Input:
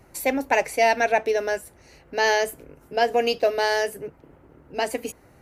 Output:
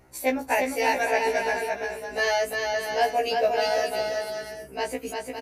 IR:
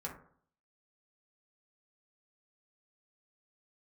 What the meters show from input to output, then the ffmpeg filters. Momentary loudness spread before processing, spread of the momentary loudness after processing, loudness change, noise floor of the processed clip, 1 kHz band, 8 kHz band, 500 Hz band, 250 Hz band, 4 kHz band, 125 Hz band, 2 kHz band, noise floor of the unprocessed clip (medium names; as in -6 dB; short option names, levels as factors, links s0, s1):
13 LU, 9 LU, -2.5 dB, -43 dBFS, -1.5 dB, -1.5 dB, -2.0 dB, -1.5 dB, -1.5 dB, no reading, -1.5 dB, -54 dBFS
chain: -af "aecho=1:1:350|560|686|761.6|807:0.631|0.398|0.251|0.158|0.1,afftfilt=real='re*1.73*eq(mod(b,3),0)':imag='im*1.73*eq(mod(b,3),0)':win_size=2048:overlap=0.75,volume=0.891"